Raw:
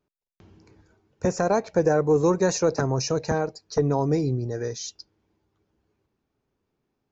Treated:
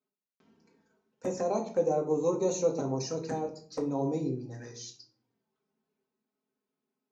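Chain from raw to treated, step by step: high-pass 200 Hz 12 dB/octave; touch-sensitive flanger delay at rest 4.7 ms, full sweep at -21.5 dBFS; reverberation RT60 0.50 s, pre-delay 4 ms, DRR 1.5 dB; trim -8.5 dB

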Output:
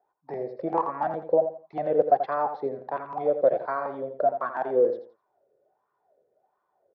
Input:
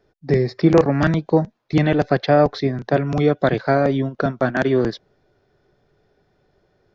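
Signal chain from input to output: wah-wah 1.4 Hz 490–1100 Hz, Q 12; on a send: feedback delay 84 ms, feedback 25%, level -9.5 dB; on the sum: trim +7.5 dB

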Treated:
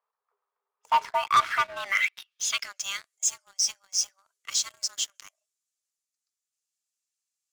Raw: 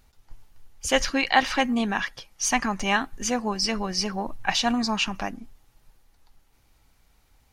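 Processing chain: band-pass sweep 620 Hz -> 7 kHz, 1.15–3.03 s; frequency shift +390 Hz; waveshaping leveller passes 3; trim -3.5 dB

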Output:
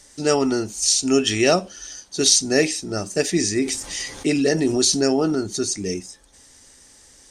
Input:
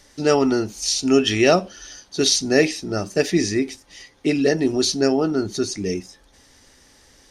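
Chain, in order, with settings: peaking EQ 8 kHz +14 dB 0.68 oct; 3.57–5.35 s: level flattener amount 50%; trim -2 dB

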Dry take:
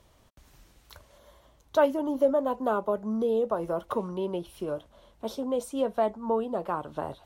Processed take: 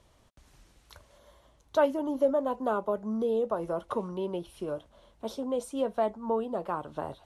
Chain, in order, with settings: steep low-pass 12 kHz 48 dB/octave; trim -2 dB

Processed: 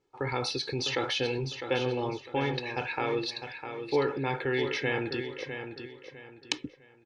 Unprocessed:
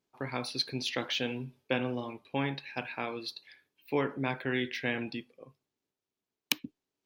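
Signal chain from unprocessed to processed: in parallel at -1 dB: compressor with a negative ratio -39 dBFS; on the sum: dynamic bell 6 kHz, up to +7 dB, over -47 dBFS, Q 0.85; steep low-pass 9.2 kHz 48 dB/octave; treble shelf 2.6 kHz -10 dB; comb 2.3 ms, depth 68%; on a send: feedback delay 654 ms, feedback 31%, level -8.5 dB

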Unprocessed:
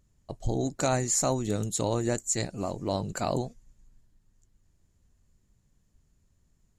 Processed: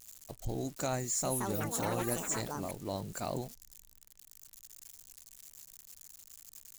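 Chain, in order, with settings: zero-crossing glitches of -31.5 dBFS; 0.99–3.19 s: ever faster or slower copies 255 ms, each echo +7 st, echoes 3; trim -8 dB

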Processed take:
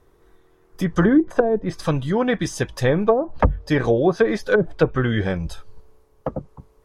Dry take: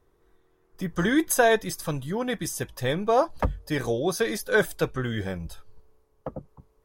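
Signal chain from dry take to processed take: low-pass that closes with the level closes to 330 Hz, closed at -17 dBFS; trim +8.5 dB

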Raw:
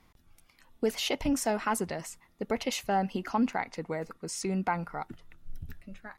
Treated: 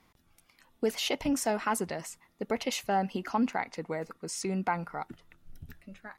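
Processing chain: bass shelf 72 Hz -10.5 dB

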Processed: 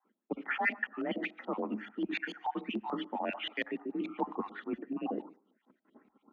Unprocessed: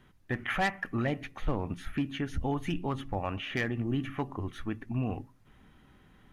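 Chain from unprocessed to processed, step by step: random holes in the spectrogram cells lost 36%; steep high-pass 170 Hz 48 dB/octave; gate -60 dBFS, range -18 dB; bass shelf 480 Hz +5.5 dB; band-stop 1.1 kHz, Q 24; reverse; compression 12:1, threshold -39 dBFS, peak gain reduction 16.5 dB; reverse; frequency shift +42 Hz; on a send at -18 dB: reverberation RT60 0.45 s, pre-delay 25 ms; on the sum: LFO low-pass saw up 6.9 Hz 640–3900 Hz; tape noise reduction on one side only decoder only; trim +6 dB

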